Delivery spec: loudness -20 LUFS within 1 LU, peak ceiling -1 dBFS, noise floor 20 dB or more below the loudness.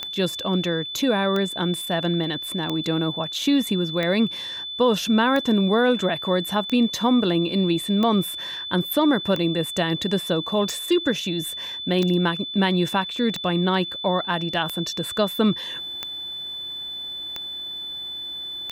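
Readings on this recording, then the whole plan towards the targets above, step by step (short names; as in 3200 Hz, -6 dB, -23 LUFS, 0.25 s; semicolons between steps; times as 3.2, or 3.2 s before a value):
clicks 15; steady tone 3500 Hz; tone level -30 dBFS; loudness -23.0 LUFS; peak -8.0 dBFS; loudness target -20.0 LUFS
-> de-click; notch 3500 Hz, Q 30; gain +3 dB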